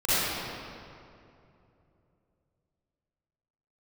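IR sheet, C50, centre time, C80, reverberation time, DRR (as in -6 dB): -9.5 dB, 0.204 s, -5.0 dB, 2.7 s, -15.0 dB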